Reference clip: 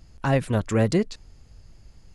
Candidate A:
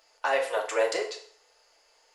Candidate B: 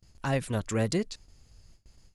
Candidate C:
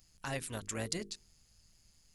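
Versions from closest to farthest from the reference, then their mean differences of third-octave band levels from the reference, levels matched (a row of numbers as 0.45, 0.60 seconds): B, C, A; 2.0, 7.0, 11.0 decibels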